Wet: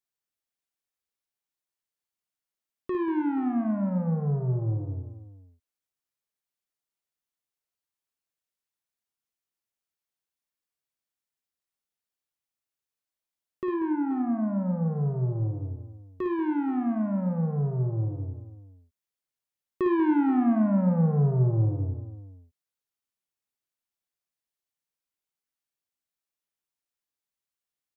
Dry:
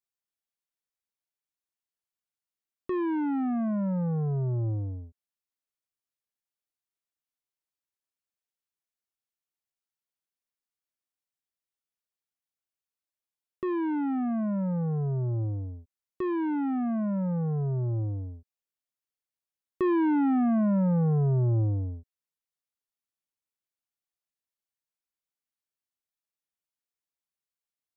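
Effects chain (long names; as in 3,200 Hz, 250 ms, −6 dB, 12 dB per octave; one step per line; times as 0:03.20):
0:13.74–0:14.88: low-pass filter 1,700 Hz 12 dB per octave
multi-tap delay 42/55/71/188/479 ms −17/−7/−18/−12/−16 dB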